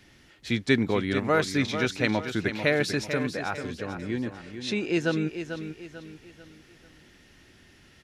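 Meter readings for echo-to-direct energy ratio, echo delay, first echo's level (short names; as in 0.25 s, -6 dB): -8.5 dB, 0.443 s, -9.0 dB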